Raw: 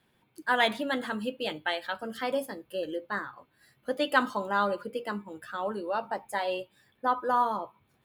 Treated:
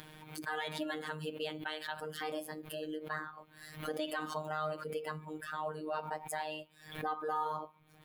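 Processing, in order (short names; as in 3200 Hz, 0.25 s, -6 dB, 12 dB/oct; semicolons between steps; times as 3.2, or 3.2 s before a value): upward compressor, threshold -29 dBFS; robotiser 154 Hz; limiter -19.5 dBFS, peak gain reduction 11.5 dB; backwards sustainer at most 99 dB/s; gain -4 dB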